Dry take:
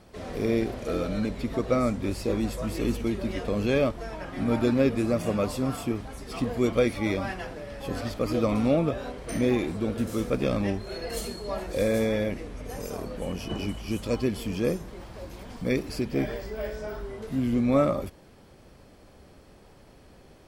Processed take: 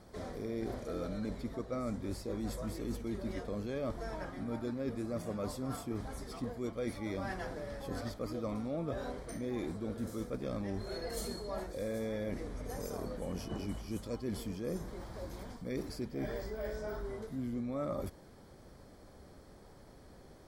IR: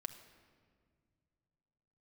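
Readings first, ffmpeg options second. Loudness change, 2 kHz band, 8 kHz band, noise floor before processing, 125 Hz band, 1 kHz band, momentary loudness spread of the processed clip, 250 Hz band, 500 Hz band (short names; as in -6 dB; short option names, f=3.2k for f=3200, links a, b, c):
-11.5 dB, -12.0 dB, -8.0 dB, -53 dBFS, -10.5 dB, -10.0 dB, 9 LU, -11.5 dB, -11.5 dB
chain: -af "equalizer=f=2.7k:w=3.8:g=-12,areverse,acompressor=threshold=-32dB:ratio=6,areverse,volume=-3dB"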